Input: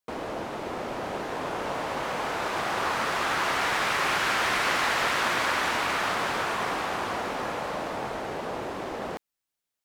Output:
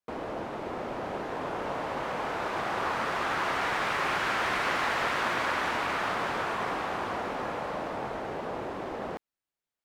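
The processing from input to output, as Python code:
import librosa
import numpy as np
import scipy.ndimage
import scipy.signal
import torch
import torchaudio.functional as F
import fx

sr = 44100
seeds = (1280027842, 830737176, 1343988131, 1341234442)

y = fx.high_shelf(x, sr, hz=3500.0, db=-9.5)
y = y * 10.0 ** (-1.5 / 20.0)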